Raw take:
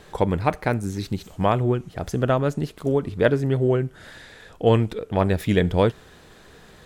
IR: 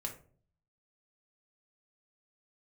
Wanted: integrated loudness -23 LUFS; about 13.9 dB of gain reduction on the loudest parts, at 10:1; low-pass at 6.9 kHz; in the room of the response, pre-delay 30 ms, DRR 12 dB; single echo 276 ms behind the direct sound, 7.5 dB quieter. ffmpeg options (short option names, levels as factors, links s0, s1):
-filter_complex "[0:a]lowpass=6900,acompressor=threshold=0.0447:ratio=10,aecho=1:1:276:0.422,asplit=2[s0][s1];[1:a]atrim=start_sample=2205,adelay=30[s2];[s1][s2]afir=irnorm=-1:irlink=0,volume=0.266[s3];[s0][s3]amix=inputs=2:normalize=0,volume=2.99"